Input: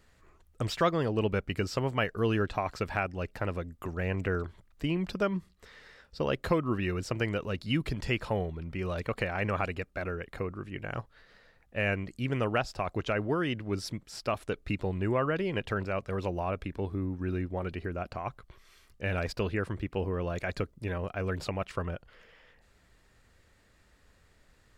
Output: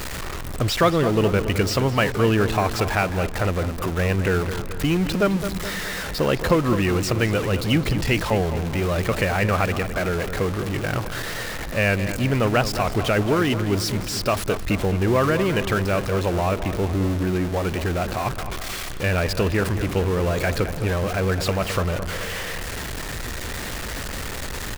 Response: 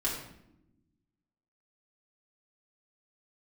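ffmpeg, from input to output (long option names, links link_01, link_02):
-filter_complex "[0:a]aeval=exprs='val(0)+0.5*0.0266*sgn(val(0))':channel_layout=same,asplit=2[link_01][link_02];[link_02]adelay=214,lowpass=frequency=2600:poles=1,volume=-10dB,asplit=2[link_03][link_04];[link_04]adelay=214,lowpass=frequency=2600:poles=1,volume=0.55,asplit=2[link_05][link_06];[link_06]adelay=214,lowpass=frequency=2600:poles=1,volume=0.55,asplit=2[link_07][link_08];[link_08]adelay=214,lowpass=frequency=2600:poles=1,volume=0.55,asplit=2[link_09][link_10];[link_10]adelay=214,lowpass=frequency=2600:poles=1,volume=0.55,asplit=2[link_11][link_12];[link_12]adelay=214,lowpass=frequency=2600:poles=1,volume=0.55[link_13];[link_01][link_03][link_05][link_07][link_09][link_11][link_13]amix=inputs=7:normalize=0,volume=7dB"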